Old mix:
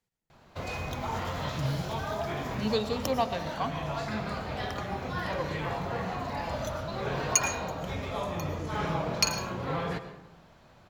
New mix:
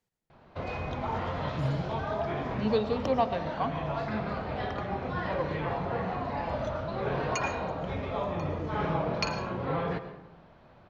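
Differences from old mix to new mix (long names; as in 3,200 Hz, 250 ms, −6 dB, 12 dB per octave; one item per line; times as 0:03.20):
background: add high-frequency loss of the air 220 metres
master: add parametric band 480 Hz +3 dB 2.4 octaves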